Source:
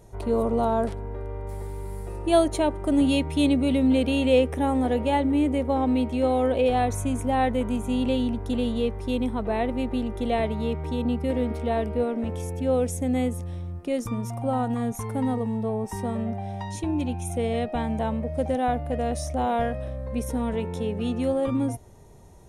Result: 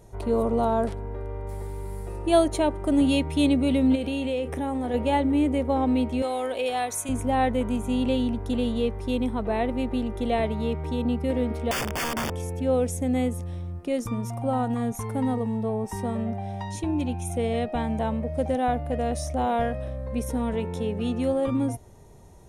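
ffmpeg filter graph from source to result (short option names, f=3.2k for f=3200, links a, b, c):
-filter_complex "[0:a]asettb=1/sr,asplit=3[a][b][c];[a]atrim=end=3.954[d];[b]atrim=start=3.95:end=4.94,asetpts=PTS-STARTPTS,afade=t=in:d=0.004:c=qsin,afade=t=out:st=0.986:d=0.004:c=qsin,asplit=2[e][f];[f]adelay=33,volume=-14dB[g];[e][g]amix=inputs=2:normalize=0,atrim=end_sample=43659,acompressor=threshold=-25dB:ratio=4:attack=3.2:release=140:knee=1:detection=peak[h];[c]atrim=start=4.936[i];[d][h]acrossfade=d=0.004:c1=hsin:c2=qsin[j];[j][i]acrossfade=d=0.004:c1=qsin:c2=hsin,asettb=1/sr,asplit=3[k][l][m];[k]atrim=end=6.224[n];[l]atrim=start=6.22:end=7.09,asetpts=PTS-STARTPTS,afade=t=in:d=0.004:c=qsin,afade=t=out:st=0.866:d=0.004:c=qsin,highpass=f=850:p=1,highshelf=f=4.5k:g=7.5[o];[m]atrim=start=7.086[p];[n][o]acrossfade=d=0.004:c1=hsin:c2=qsin[q];[q][p]acrossfade=d=0.004:c1=qsin:c2=hsin,asettb=1/sr,asplit=3[r][s][t];[r]atrim=end=11.714[u];[s]atrim=start=11.71:end=12.37,asetpts=PTS-STARTPTS,afade=t=in:d=0.004:c=qsin,afade=t=out:st=0.656:d=0.004:c=qsin,aeval=exprs='(mod(14.1*val(0)+1,2)-1)/14.1':c=same,asuperstop=centerf=4000:order=12:qfactor=5.6[v];[t]atrim=start=12.366[w];[u][v]acrossfade=d=0.004:c1=hsin:c2=qsin[x];[x][w]acrossfade=d=0.004:c1=qsin:c2=hsin"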